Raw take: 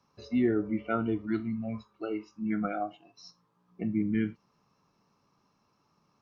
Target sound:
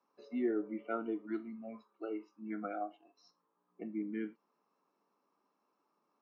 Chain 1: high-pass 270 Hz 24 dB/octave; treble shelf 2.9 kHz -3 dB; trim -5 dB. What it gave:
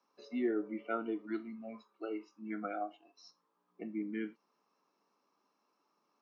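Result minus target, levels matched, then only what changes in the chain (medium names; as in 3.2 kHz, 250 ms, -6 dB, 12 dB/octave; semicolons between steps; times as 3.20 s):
4 kHz band +6.5 dB
change: treble shelf 2.9 kHz -14.5 dB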